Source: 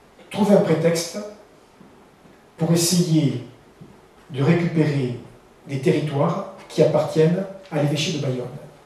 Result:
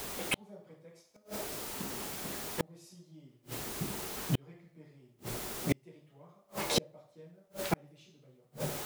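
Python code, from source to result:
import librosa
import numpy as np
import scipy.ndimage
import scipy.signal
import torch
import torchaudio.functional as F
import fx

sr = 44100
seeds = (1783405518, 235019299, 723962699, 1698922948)

y = fx.quant_dither(x, sr, seeds[0], bits=8, dither='triangular')
y = fx.gate_flip(y, sr, shuts_db=-22.0, range_db=-42)
y = y * 10.0 ** (5.5 / 20.0)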